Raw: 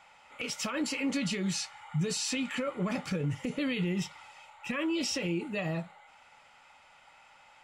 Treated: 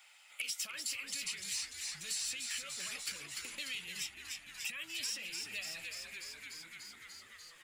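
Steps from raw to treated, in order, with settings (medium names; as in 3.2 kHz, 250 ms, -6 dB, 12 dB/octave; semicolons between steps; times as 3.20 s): harmonic-percussive split harmonic -6 dB; compression 8:1, threshold -40 dBFS, peak gain reduction 9.5 dB; gate -48 dBFS, range -22 dB; differentiator; saturation -34 dBFS, distortion -26 dB; fifteen-band graphic EQ 400 Hz -7 dB, 1 kHz -7 dB, 6.3 kHz -5 dB; on a send: frequency-shifting echo 294 ms, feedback 62%, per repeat -110 Hz, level -7 dB; on the sum: three bands compressed up and down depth 70%; trim +13 dB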